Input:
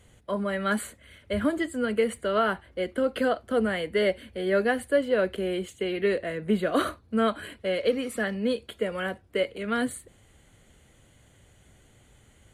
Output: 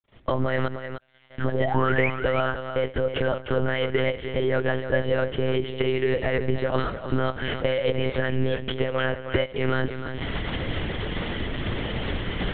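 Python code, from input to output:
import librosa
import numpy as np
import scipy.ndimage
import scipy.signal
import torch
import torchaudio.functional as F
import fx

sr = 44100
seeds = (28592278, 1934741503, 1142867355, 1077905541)

y = fx.recorder_agc(x, sr, target_db=-16.0, rise_db_per_s=71.0, max_gain_db=30)
y = 10.0 ** (-9.0 / 20.0) * np.tanh(y / 10.0 ** (-9.0 / 20.0))
y = fx.comb_fb(y, sr, f0_hz=120.0, decay_s=1.2, harmonics='odd', damping=0.0, mix_pct=100, at=(0.67, 1.39))
y = fx.spec_paint(y, sr, seeds[0], shape='rise', start_s=1.54, length_s=0.56, low_hz=460.0, high_hz=2600.0, level_db=-25.0)
y = np.sign(y) * np.maximum(np.abs(y) - 10.0 ** (-47.0 / 20.0), 0.0)
y = fx.echo_multitap(y, sr, ms=(87, 193, 305), db=(-19.5, -19.5, -9.5))
y = fx.lpc_monotone(y, sr, seeds[1], pitch_hz=130.0, order=10)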